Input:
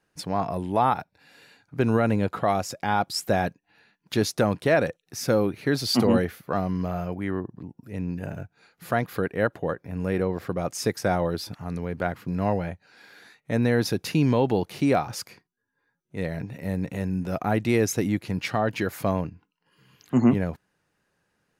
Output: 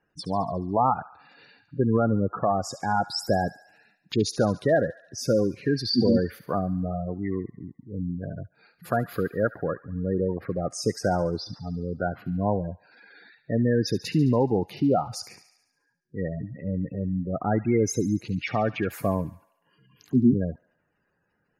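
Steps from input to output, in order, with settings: spectral gate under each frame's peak -15 dB strong; feedback echo behind a high-pass 71 ms, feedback 59%, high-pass 1.5 kHz, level -12.5 dB

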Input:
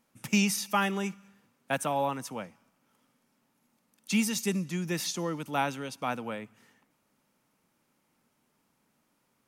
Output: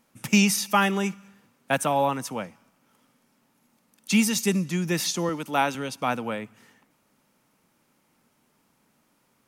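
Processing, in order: 5.29–5.75 s: Bessel high-pass 200 Hz; trim +6 dB

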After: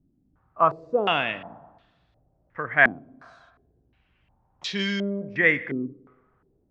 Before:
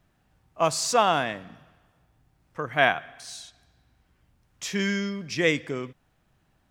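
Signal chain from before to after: spring tank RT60 1.2 s, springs 35/55 ms, chirp 55 ms, DRR 16.5 dB; step-sequenced low-pass 2.8 Hz 280–4000 Hz; trim -2.5 dB

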